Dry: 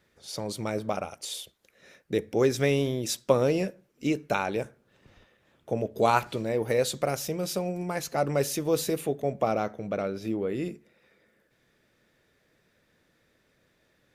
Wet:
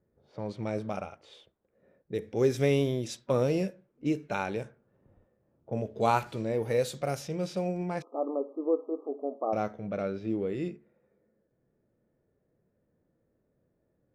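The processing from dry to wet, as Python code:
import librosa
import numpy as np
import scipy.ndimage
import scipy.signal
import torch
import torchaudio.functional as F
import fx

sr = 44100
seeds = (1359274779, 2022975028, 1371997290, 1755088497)

y = fx.env_lowpass(x, sr, base_hz=580.0, full_db=-24.0)
y = fx.brickwall_bandpass(y, sr, low_hz=240.0, high_hz=1300.0, at=(8.02, 9.53))
y = fx.hpss(y, sr, part='percussive', gain_db=-9)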